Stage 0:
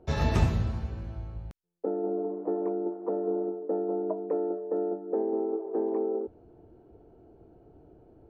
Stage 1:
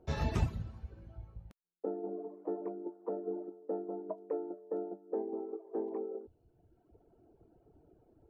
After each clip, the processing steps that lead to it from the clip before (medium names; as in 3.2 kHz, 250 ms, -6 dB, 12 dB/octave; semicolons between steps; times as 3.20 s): reverb removal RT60 1.4 s; trim -6 dB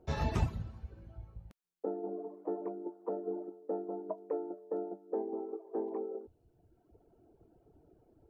dynamic bell 900 Hz, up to +3 dB, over -56 dBFS, Q 1.5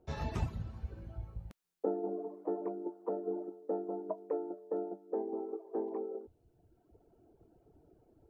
gain riding within 5 dB 0.5 s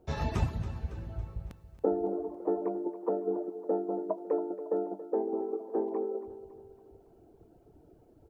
feedback delay 278 ms, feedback 50%, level -14 dB; trim +5.5 dB